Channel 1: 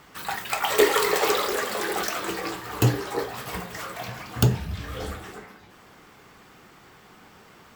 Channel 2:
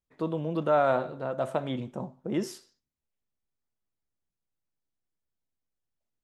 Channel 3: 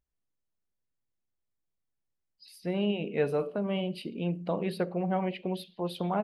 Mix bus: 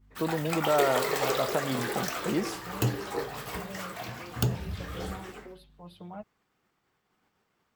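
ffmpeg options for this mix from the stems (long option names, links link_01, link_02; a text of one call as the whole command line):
ffmpeg -i stem1.wav -i stem2.wav -i stem3.wav -filter_complex "[0:a]agate=range=-33dB:threshold=-38dB:ratio=3:detection=peak,volume=-4dB[link_01];[1:a]volume=2.5dB[link_02];[2:a]aeval=exprs='val(0)+0.00562*(sin(2*PI*50*n/s)+sin(2*PI*2*50*n/s)/2+sin(2*PI*3*50*n/s)/3+sin(2*PI*4*50*n/s)/4+sin(2*PI*5*50*n/s)/5)':channel_layout=same,asplit=2[link_03][link_04];[link_04]adelay=5.7,afreqshift=0.94[link_05];[link_03][link_05]amix=inputs=2:normalize=1,volume=-11dB[link_06];[link_01][link_02][link_06]amix=inputs=3:normalize=0,acompressor=threshold=-28dB:ratio=1.5" out.wav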